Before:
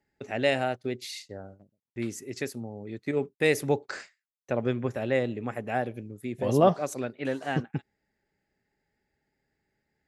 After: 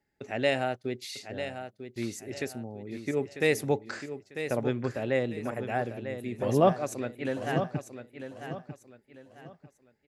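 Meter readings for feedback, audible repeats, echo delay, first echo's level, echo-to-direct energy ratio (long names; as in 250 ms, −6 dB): 31%, 3, 946 ms, −9.5 dB, −9.0 dB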